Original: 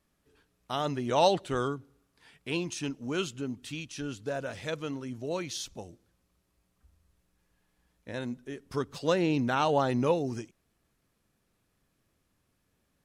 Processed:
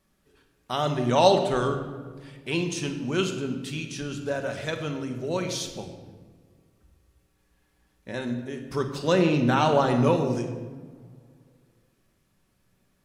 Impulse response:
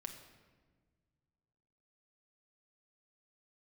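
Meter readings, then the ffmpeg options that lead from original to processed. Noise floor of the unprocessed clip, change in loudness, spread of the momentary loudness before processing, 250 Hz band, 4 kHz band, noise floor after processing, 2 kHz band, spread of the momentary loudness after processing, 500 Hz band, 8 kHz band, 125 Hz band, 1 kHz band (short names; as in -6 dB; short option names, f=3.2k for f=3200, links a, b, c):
-76 dBFS, +5.5 dB, 15 LU, +6.0 dB, +5.0 dB, -69 dBFS, +5.0 dB, 16 LU, +5.5 dB, +4.5 dB, +7.5 dB, +5.0 dB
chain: -filter_complex "[1:a]atrim=start_sample=2205[a];[0:a][a]afir=irnorm=-1:irlink=0,volume=8.5dB"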